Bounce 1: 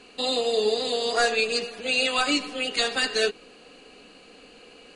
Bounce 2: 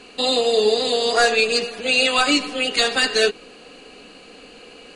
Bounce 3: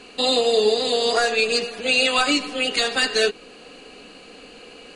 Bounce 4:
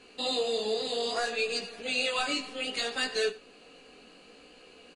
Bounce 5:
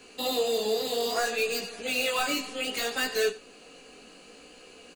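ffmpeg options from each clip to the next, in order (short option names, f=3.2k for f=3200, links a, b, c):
-af "acontrast=58"
-af "alimiter=limit=-9dB:level=0:latency=1:release=394"
-af "flanger=delay=15.5:depth=7.3:speed=0.64,aecho=1:1:94:0.0944,volume=-7.5dB"
-filter_complex "[0:a]acrossover=split=110|3000[a][b][c];[c]asoftclip=type=tanh:threshold=-38.5dB[d];[a][b][d]amix=inputs=3:normalize=0,aexciter=amount=2.8:drive=3:freq=5.6k,volume=3dB"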